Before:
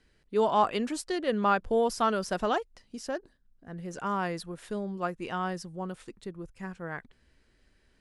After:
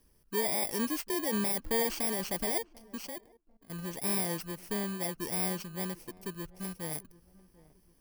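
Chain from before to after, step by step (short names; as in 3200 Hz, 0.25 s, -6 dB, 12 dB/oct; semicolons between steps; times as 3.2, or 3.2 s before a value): FFT order left unsorted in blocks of 32 samples; limiter -23 dBFS, peak gain reduction 10.5 dB; on a send: darkening echo 0.743 s, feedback 39%, low-pass 840 Hz, level -20 dB; 3.07–3.7 on the sum: level quantiser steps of 20 dB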